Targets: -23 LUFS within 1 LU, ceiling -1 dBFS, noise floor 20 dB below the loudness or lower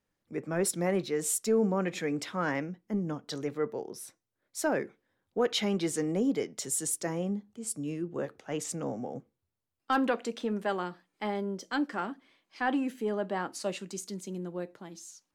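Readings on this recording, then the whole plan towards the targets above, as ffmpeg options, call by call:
loudness -32.5 LUFS; peak -15.0 dBFS; loudness target -23.0 LUFS
-> -af "volume=9.5dB"

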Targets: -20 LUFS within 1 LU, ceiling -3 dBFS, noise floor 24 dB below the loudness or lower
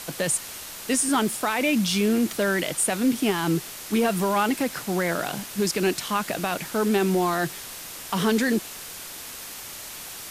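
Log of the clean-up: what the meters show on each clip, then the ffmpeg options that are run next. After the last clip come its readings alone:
noise floor -39 dBFS; noise floor target -48 dBFS; loudness -24.0 LUFS; peak -12.5 dBFS; loudness target -20.0 LUFS
-> -af "afftdn=nr=9:nf=-39"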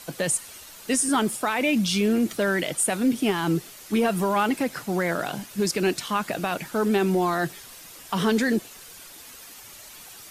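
noise floor -45 dBFS; noise floor target -49 dBFS
-> -af "afftdn=nr=6:nf=-45"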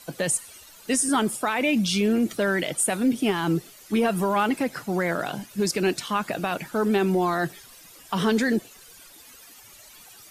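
noise floor -49 dBFS; loudness -24.5 LUFS; peak -13.0 dBFS; loudness target -20.0 LUFS
-> -af "volume=4.5dB"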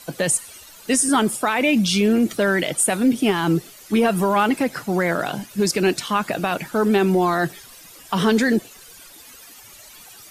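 loudness -20.0 LUFS; peak -8.5 dBFS; noise floor -45 dBFS

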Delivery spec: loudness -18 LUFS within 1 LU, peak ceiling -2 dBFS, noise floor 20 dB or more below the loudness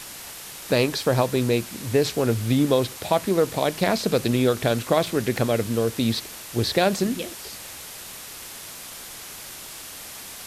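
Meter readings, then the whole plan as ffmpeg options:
noise floor -39 dBFS; noise floor target -43 dBFS; loudness -23.0 LUFS; peak -5.5 dBFS; loudness target -18.0 LUFS
-> -af "afftdn=nr=6:nf=-39"
-af "volume=5dB,alimiter=limit=-2dB:level=0:latency=1"

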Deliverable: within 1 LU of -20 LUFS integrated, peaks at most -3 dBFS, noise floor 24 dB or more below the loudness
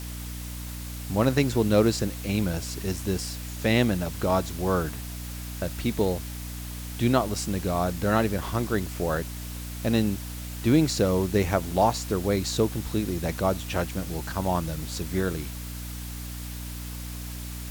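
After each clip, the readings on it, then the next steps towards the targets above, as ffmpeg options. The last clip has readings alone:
hum 60 Hz; harmonics up to 300 Hz; hum level -34 dBFS; noise floor -36 dBFS; noise floor target -52 dBFS; loudness -27.5 LUFS; peak -8.0 dBFS; loudness target -20.0 LUFS
-> -af "bandreject=f=60:t=h:w=4,bandreject=f=120:t=h:w=4,bandreject=f=180:t=h:w=4,bandreject=f=240:t=h:w=4,bandreject=f=300:t=h:w=4"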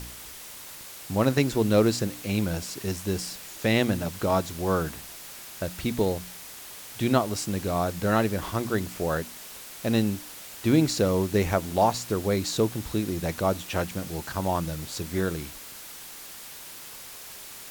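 hum none; noise floor -43 dBFS; noise floor target -51 dBFS
-> -af "afftdn=nr=8:nf=-43"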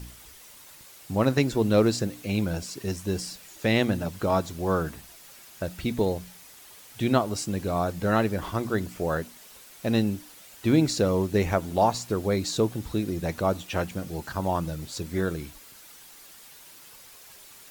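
noise floor -49 dBFS; noise floor target -51 dBFS
-> -af "afftdn=nr=6:nf=-49"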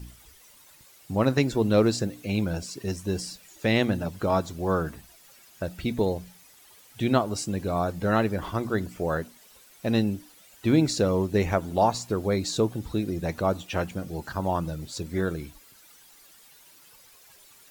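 noise floor -54 dBFS; loudness -27.0 LUFS; peak -9.0 dBFS; loudness target -20.0 LUFS
-> -af "volume=7dB,alimiter=limit=-3dB:level=0:latency=1"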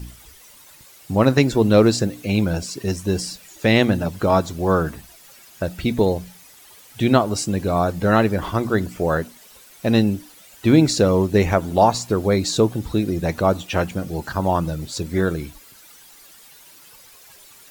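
loudness -20.0 LUFS; peak -3.0 dBFS; noise floor -47 dBFS

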